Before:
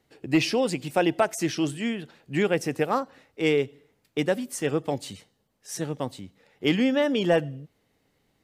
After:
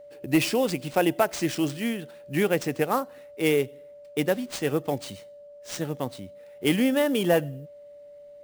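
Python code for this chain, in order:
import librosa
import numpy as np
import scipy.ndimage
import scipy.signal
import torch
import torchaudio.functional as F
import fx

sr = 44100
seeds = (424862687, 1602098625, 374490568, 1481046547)

y = fx.sample_hold(x, sr, seeds[0], rate_hz=13000.0, jitter_pct=20)
y = y + 10.0 ** (-44.0 / 20.0) * np.sin(2.0 * np.pi * 580.0 * np.arange(len(y)) / sr)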